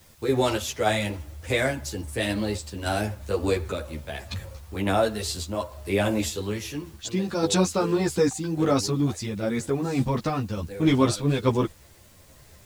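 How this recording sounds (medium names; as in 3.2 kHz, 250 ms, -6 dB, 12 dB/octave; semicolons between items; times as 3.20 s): random-step tremolo, depth 55%; a quantiser's noise floor 10-bit, dither triangular; a shimmering, thickened sound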